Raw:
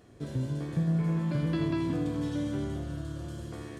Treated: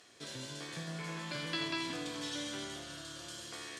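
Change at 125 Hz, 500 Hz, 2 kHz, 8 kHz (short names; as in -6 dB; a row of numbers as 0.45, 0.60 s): -17.5 dB, -8.0 dB, +4.5 dB, n/a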